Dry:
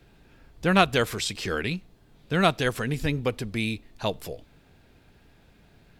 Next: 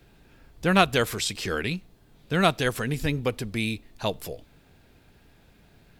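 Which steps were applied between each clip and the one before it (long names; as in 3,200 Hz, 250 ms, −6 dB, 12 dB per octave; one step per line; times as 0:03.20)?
high-shelf EQ 9,000 Hz +6 dB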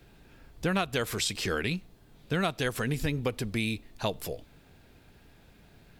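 downward compressor 6 to 1, threshold −25 dBFS, peak gain reduction 11.5 dB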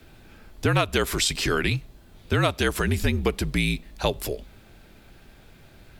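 frequency shifter −53 Hz
level +6.5 dB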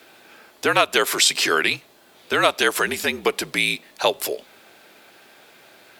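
high-pass filter 460 Hz 12 dB per octave
level +7 dB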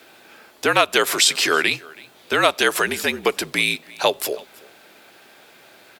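single-tap delay 325 ms −23 dB
level +1 dB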